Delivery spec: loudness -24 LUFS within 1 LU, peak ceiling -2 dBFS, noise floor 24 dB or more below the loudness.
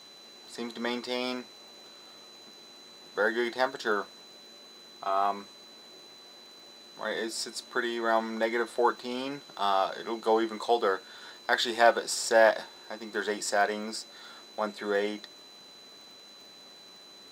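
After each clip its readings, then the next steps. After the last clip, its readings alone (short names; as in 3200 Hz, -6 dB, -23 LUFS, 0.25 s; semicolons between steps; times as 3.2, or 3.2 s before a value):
ticks 49/s; steady tone 4000 Hz; tone level -50 dBFS; loudness -29.5 LUFS; peak -8.0 dBFS; loudness target -24.0 LUFS
-> de-click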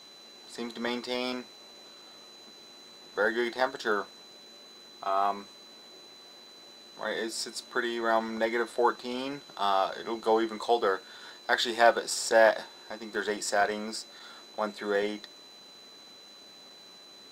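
ticks 0.17/s; steady tone 4000 Hz; tone level -50 dBFS
-> notch 4000 Hz, Q 30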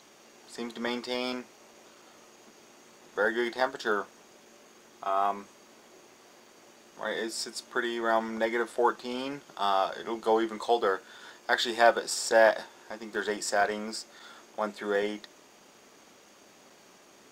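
steady tone none; loudness -29.5 LUFS; peak -8.0 dBFS; loudness target -24.0 LUFS
-> gain +5.5 dB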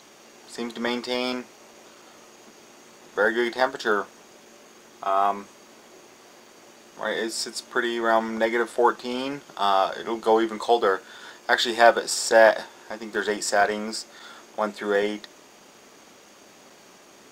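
loudness -24.0 LUFS; peak -2.5 dBFS; noise floor -51 dBFS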